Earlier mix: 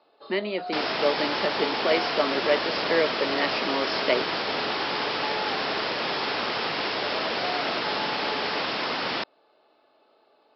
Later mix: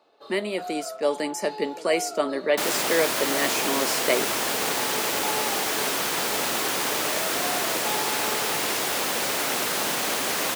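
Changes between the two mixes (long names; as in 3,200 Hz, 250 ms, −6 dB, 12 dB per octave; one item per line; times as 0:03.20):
second sound: entry +1.85 s
master: remove Chebyshev low-pass filter 5,300 Hz, order 8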